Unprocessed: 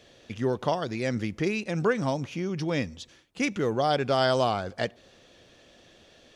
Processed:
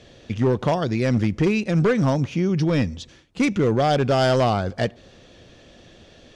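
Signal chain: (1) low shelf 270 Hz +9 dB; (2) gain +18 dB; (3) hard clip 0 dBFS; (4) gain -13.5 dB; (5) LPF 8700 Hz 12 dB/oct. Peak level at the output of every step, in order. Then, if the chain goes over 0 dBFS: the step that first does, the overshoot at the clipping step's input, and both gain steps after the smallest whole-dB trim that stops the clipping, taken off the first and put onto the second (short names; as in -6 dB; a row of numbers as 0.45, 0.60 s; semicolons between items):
-9.5, +8.5, 0.0, -13.5, -13.0 dBFS; step 2, 8.5 dB; step 2 +9 dB, step 4 -4.5 dB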